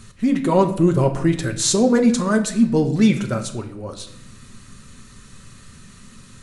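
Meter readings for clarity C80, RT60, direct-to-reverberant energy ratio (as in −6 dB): 13.5 dB, 0.80 s, 4.5 dB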